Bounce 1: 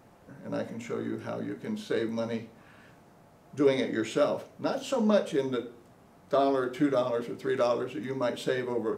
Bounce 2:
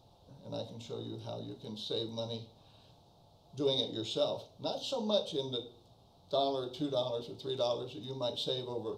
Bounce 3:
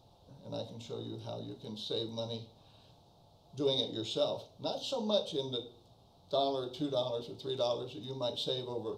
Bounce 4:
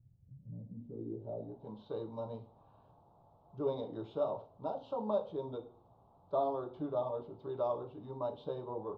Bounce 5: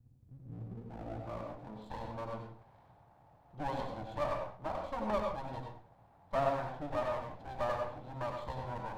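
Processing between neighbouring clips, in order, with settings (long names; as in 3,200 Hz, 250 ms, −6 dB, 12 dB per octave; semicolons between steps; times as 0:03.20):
drawn EQ curve 110 Hz 0 dB, 220 Hz −12 dB, 870 Hz −4 dB, 1,900 Hz −29 dB, 3,700 Hz +9 dB, 7,300 Hz −9 dB
no processing that can be heard
low-pass filter sweep 130 Hz → 1,100 Hz, 0:00.45–0:01.76; level −4 dB
lower of the sound and its delayed copy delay 1.2 ms; convolution reverb RT60 0.40 s, pre-delay 85 ms, DRR 3 dB; level +1 dB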